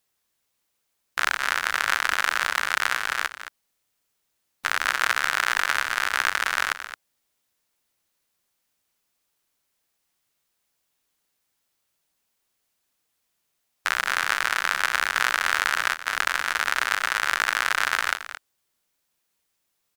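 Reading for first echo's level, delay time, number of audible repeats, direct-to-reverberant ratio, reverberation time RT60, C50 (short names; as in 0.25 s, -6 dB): -12.0 dB, 0.22 s, 1, none, none, none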